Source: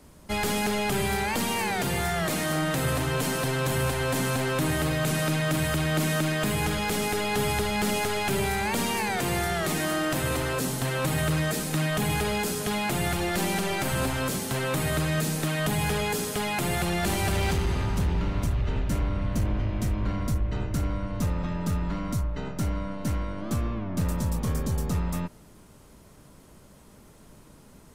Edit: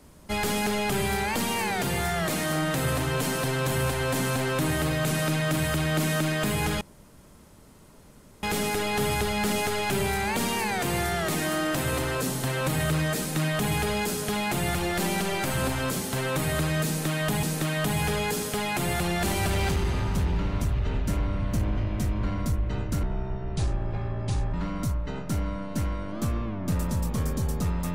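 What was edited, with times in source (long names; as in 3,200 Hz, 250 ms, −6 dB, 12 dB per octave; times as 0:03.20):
0:06.81: splice in room tone 1.62 s
0:15.25–0:15.81: repeat, 2 plays
0:20.85–0:21.83: play speed 65%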